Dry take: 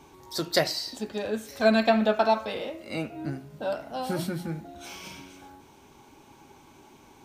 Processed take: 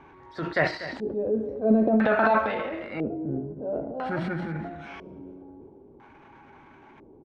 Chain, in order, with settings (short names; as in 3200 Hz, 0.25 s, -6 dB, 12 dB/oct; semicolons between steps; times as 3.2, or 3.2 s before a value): transient shaper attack -6 dB, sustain +9 dB; echo 0.242 s -13.5 dB; LFO low-pass square 0.5 Hz 440–1800 Hz